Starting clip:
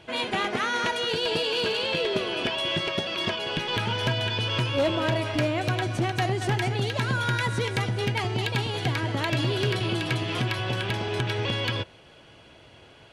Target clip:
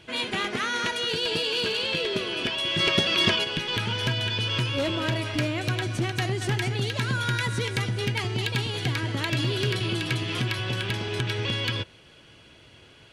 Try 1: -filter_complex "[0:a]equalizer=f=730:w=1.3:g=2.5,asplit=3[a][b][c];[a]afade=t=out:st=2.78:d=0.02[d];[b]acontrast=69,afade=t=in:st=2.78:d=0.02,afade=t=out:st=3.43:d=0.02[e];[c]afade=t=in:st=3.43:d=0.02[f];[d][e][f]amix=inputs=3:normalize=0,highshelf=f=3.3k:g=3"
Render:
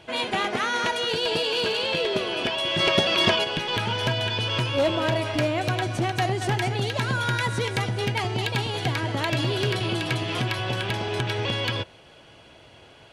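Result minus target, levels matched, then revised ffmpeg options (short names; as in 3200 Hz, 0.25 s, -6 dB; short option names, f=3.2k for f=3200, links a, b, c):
1000 Hz band +4.5 dB
-filter_complex "[0:a]equalizer=f=730:w=1.3:g=-7,asplit=3[a][b][c];[a]afade=t=out:st=2.78:d=0.02[d];[b]acontrast=69,afade=t=in:st=2.78:d=0.02,afade=t=out:st=3.43:d=0.02[e];[c]afade=t=in:st=3.43:d=0.02[f];[d][e][f]amix=inputs=3:normalize=0,highshelf=f=3.3k:g=3"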